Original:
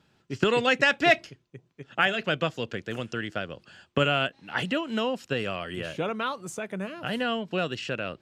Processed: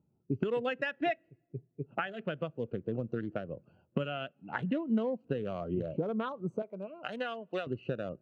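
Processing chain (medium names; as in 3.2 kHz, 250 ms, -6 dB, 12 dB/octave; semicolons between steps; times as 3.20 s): local Wiener filter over 25 samples; 6.62–7.67 s: high-pass 1.2 kHz 6 dB/octave; compression 16:1, threshold -36 dBFS, peak gain reduction 22 dB; on a send at -24 dB: reverberation RT60 2.1 s, pre-delay 6 ms; on the sum: spectral contrast expander 1.5:1; trim +4.5 dB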